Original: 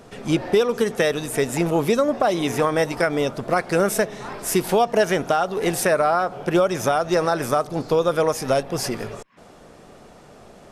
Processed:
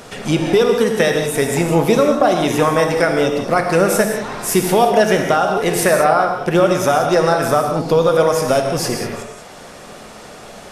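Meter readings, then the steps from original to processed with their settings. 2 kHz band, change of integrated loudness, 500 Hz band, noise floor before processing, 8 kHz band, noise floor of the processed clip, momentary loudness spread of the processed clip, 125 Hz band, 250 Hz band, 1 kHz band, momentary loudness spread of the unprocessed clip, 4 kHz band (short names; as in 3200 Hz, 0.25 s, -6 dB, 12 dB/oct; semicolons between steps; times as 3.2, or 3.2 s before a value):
+6.0 dB, +6.0 dB, +6.0 dB, -47 dBFS, +6.0 dB, -37 dBFS, 6 LU, +6.5 dB, +5.5 dB, +6.0 dB, 5 LU, +6.0 dB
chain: non-linear reverb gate 0.22 s flat, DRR 3 dB; mismatched tape noise reduction encoder only; gain +4 dB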